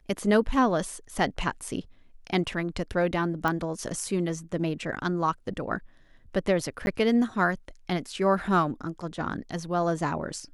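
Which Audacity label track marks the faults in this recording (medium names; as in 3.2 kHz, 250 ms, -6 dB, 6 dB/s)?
3.480000	3.480000	pop -14 dBFS
6.860000	6.870000	dropout 11 ms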